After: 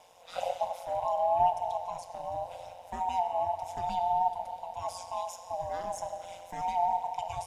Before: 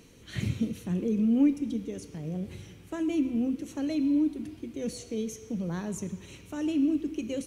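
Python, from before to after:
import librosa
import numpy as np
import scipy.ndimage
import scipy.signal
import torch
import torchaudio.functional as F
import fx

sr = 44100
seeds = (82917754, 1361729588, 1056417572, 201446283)

y = fx.band_swap(x, sr, width_hz=500)
y = fx.rev_schroeder(y, sr, rt60_s=3.5, comb_ms=33, drr_db=11.0)
y = y * np.sin(2.0 * np.pi * 88.0 * np.arange(len(y)) / sr)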